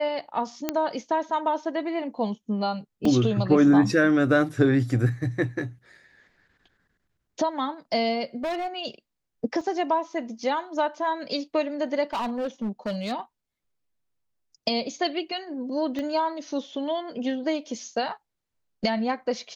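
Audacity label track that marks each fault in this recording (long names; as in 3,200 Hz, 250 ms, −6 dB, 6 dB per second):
0.690000	0.690000	click −10 dBFS
3.050000	3.050000	drop-out 3.3 ms
8.430000	8.680000	clipping −25 dBFS
9.610000	9.610000	drop-out 2.2 ms
12.130000	13.130000	clipping −24.5 dBFS
15.990000	15.990000	click −20 dBFS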